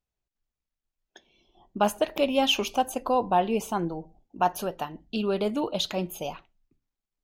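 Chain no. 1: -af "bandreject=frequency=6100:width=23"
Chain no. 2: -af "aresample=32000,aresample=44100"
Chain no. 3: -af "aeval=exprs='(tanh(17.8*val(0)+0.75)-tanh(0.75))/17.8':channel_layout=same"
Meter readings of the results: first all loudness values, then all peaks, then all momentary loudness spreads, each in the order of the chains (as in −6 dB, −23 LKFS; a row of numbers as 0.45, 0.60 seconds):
−27.5, −27.5, −33.5 LKFS; −10.0, −10.0, −20.5 dBFS; 11, 11, 12 LU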